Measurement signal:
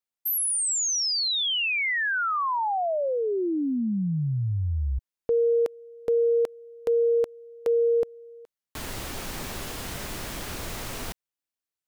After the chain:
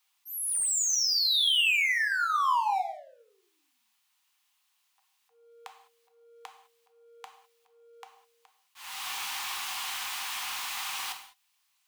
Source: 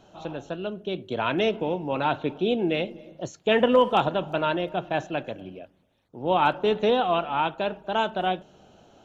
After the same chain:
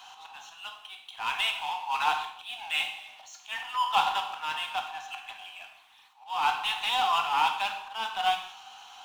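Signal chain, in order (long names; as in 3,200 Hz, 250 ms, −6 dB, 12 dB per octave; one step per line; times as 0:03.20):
volume swells 354 ms
Chebyshev high-pass with heavy ripple 750 Hz, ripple 6 dB
power curve on the samples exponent 0.7
reverb whose tail is shaped and stops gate 230 ms falling, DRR 4.5 dB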